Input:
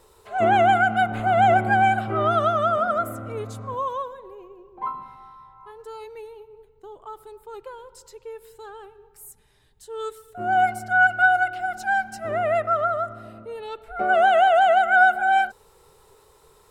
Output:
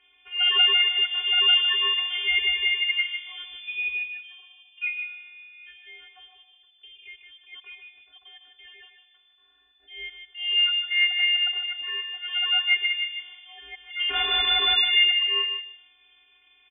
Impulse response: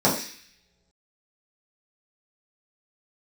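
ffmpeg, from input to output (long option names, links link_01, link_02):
-filter_complex "[0:a]tiltshelf=frequency=970:gain=-4.5,asplit=3[link_01][link_02][link_03];[link_01]afade=type=out:start_time=14.09:duration=0.02[link_04];[link_02]aeval=exprs='(mod(6.68*val(0)+1,2)-1)/6.68':channel_layout=same,afade=type=in:start_time=14.09:duration=0.02,afade=type=out:start_time=14.76:duration=0.02[link_05];[link_03]afade=type=in:start_time=14.76:duration=0.02[link_06];[link_04][link_05][link_06]amix=inputs=3:normalize=0,afftfilt=real='hypot(re,im)*cos(PI*b)':imag='0':win_size=512:overlap=0.75,asplit=2[link_07][link_08];[link_08]adelay=152,lowpass=frequency=1300:poles=1,volume=-4dB,asplit=2[link_09][link_10];[link_10]adelay=152,lowpass=frequency=1300:poles=1,volume=0.24,asplit=2[link_11][link_12];[link_12]adelay=152,lowpass=frequency=1300:poles=1,volume=0.24[link_13];[link_07][link_09][link_11][link_13]amix=inputs=4:normalize=0,lowpass=frequency=3000:width_type=q:width=0.5098,lowpass=frequency=3000:width_type=q:width=0.6013,lowpass=frequency=3000:width_type=q:width=0.9,lowpass=frequency=3000:width_type=q:width=2.563,afreqshift=-3500"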